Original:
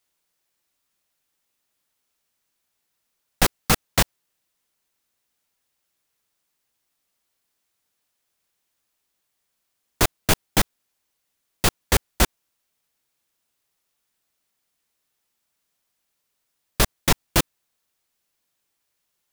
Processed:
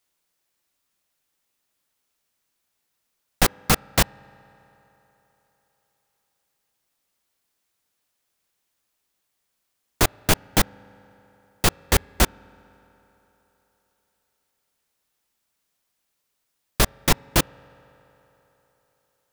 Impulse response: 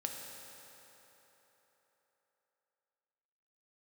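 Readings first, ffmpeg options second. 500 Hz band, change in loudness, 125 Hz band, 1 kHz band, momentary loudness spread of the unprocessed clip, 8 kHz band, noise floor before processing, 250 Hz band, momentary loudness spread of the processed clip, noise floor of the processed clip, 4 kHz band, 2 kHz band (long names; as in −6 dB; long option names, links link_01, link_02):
+0.5 dB, 0.0 dB, +0.5 dB, +0.5 dB, 3 LU, 0.0 dB, −77 dBFS, +0.5 dB, 4 LU, −77 dBFS, 0.0 dB, 0.0 dB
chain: -filter_complex "[0:a]asplit=2[link_01][link_02];[1:a]atrim=start_sample=2205,lowpass=2400[link_03];[link_02][link_03]afir=irnorm=-1:irlink=0,volume=-20.5dB[link_04];[link_01][link_04]amix=inputs=2:normalize=0"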